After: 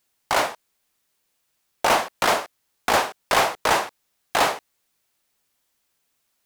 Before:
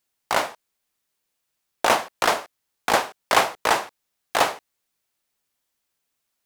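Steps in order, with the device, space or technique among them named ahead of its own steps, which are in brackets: saturation between pre-emphasis and de-emphasis (treble shelf 3.2 kHz +11 dB; saturation -16 dBFS, distortion -8 dB; treble shelf 3.2 kHz -11 dB); trim +5.5 dB

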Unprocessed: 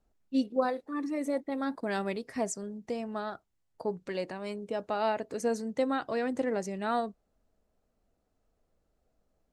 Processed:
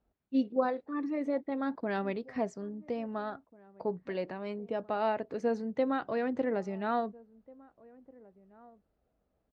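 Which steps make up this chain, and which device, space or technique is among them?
high-pass 45 Hz; shout across a valley (distance through air 240 m; echo from a far wall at 290 m, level -23 dB)

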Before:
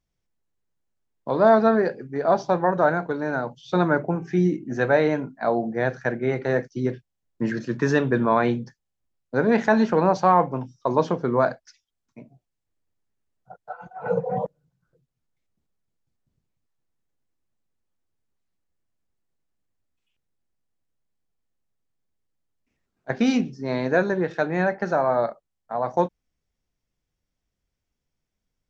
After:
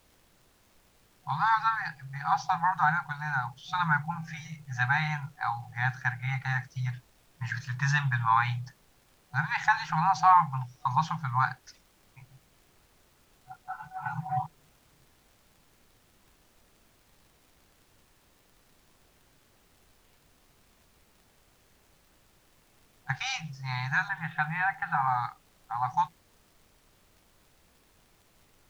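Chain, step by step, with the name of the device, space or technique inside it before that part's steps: FFT band-reject 170–740 Hz; 24.08–25.08 s: steep low-pass 3.6 kHz 48 dB/octave; vinyl LP (crackle; pink noise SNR 31 dB)

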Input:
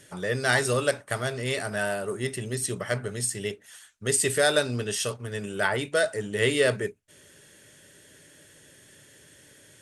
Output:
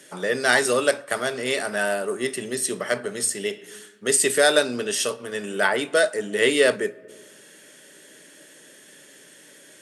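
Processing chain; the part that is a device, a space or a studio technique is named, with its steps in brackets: high-pass 200 Hz 24 dB/octave; compressed reverb return (on a send at -6 dB: reverberation RT60 0.90 s, pre-delay 29 ms + compression 6:1, threshold -38 dBFS, peak gain reduction 19.5 dB); on the sum: trim +4.5 dB

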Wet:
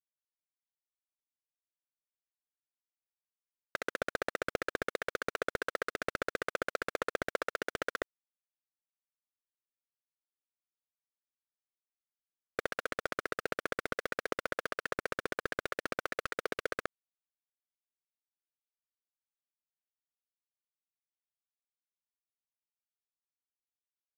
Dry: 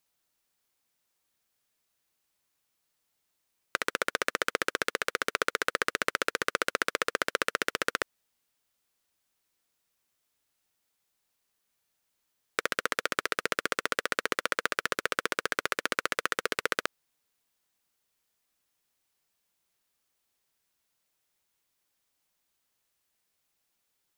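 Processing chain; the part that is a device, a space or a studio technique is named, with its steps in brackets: early transistor amplifier (crossover distortion -45 dBFS; slew-rate limiter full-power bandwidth 89 Hz)

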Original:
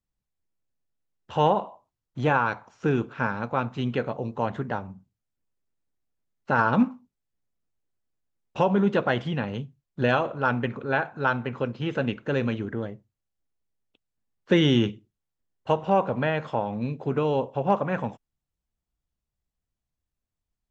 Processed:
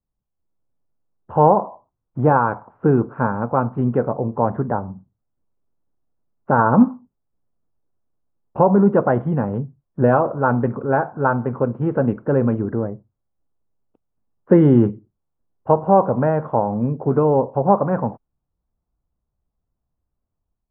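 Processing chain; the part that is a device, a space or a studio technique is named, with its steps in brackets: action camera in a waterproof case (low-pass 1.2 kHz 24 dB/octave; level rider gain up to 5.5 dB; trim +3 dB; AAC 64 kbps 22.05 kHz)

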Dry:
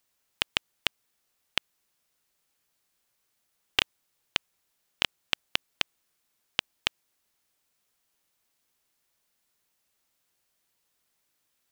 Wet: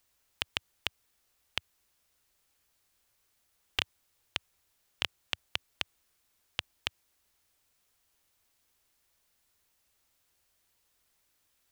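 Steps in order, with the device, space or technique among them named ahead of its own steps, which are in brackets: car stereo with a boomy subwoofer (resonant low shelf 110 Hz +6.5 dB, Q 1.5; peak limiter -10.5 dBFS, peak gain reduction 8.5 dB); trim +2 dB

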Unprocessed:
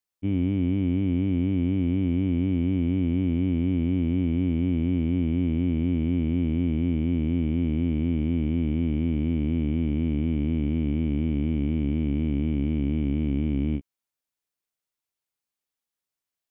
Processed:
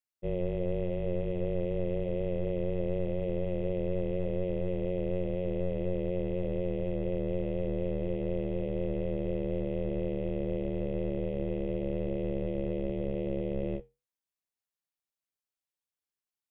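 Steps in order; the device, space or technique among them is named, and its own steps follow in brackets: alien voice (ring modulator 270 Hz; flange 0.9 Hz, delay 9.1 ms, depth 2.7 ms, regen -72%)

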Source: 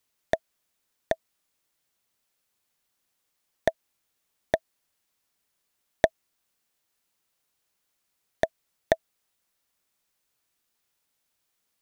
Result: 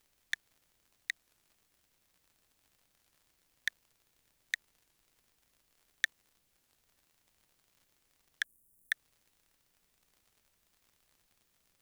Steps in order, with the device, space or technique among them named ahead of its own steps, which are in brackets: steep high-pass 1.5 kHz 48 dB/octave; warped LP (warped record 33 1/3 rpm, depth 160 cents; crackle 77 per s -55 dBFS; pink noise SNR 33 dB); 8.44–8.92 s: FFT filter 250 Hz 0 dB, 4.2 kHz -27 dB, 9.2 kHz +8 dB; trim +1 dB

